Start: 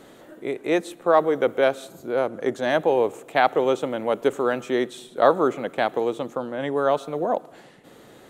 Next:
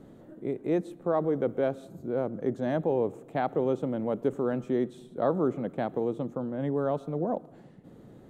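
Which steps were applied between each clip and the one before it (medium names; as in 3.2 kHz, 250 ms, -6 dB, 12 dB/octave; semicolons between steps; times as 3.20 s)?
FFT filter 180 Hz 0 dB, 390 Hz -9 dB, 2.6 kHz -22 dB; in parallel at -3 dB: peak limiter -25 dBFS, peak gain reduction 9.5 dB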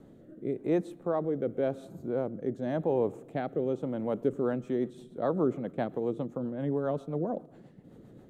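rotary cabinet horn 0.9 Hz, later 7.5 Hz, at 4.02 s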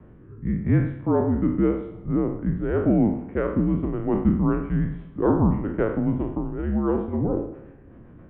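spectral sustain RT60 0.61 s; mistuned SSB -210 Hz 280–2600 Hz; spring tank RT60 2 s, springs 47/53 ms, chirp 75 ms, DRR 18 dB; trim +8 dB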